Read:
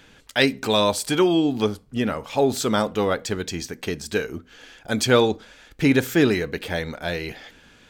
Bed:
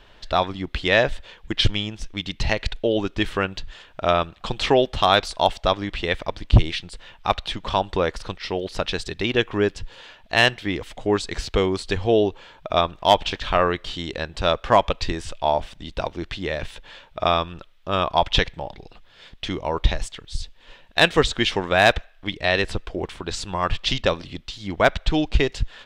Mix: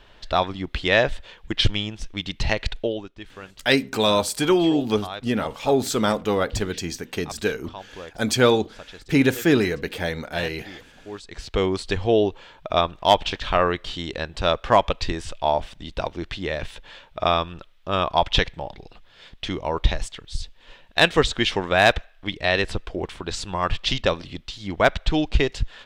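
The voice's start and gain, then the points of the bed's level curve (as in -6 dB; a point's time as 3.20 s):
3.30 s, 0.0 dB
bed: 2.82 s -0.5 dB
3.12 s -17 dB
11.08 s -17 dB
11.64 s -0.5 dB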